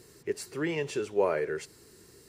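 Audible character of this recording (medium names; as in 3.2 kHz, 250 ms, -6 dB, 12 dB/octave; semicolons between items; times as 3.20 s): noise floor -57 dBFS; spectral tilt -5.0 dB/octave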